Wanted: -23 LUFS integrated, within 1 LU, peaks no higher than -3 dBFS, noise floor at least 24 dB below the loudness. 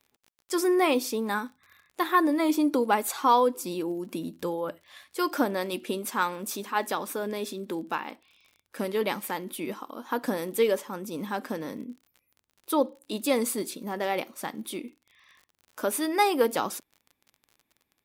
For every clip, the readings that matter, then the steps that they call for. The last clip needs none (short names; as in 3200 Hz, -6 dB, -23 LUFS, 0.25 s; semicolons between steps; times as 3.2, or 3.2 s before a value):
ticks 41/s; loudness -28.5 LUFS; peak -10.0 dBFS; loudness target -23.0 LUFS
-> de-click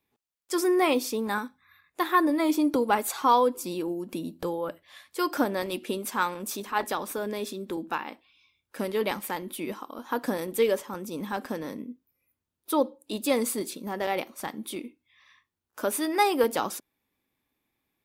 ticks 0.055/s; loudness -28.5 LUFS; peak -10.0 dBFS; loudness target -23.0 LUFS
-> gain +5.5 dB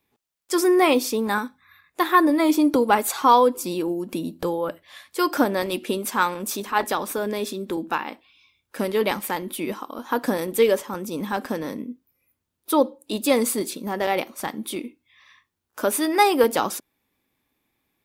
loudness -23.0 LUFS; peak -4.5 dBFS; noise floor -78 dBFS